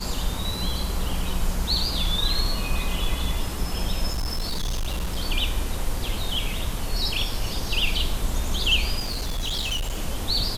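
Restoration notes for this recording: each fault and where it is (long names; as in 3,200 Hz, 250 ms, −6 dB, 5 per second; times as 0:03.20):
0:04.10–0:05.17: clipping −22.5 dBFS
0:08.99–0:09.98: clipping −23 dBFS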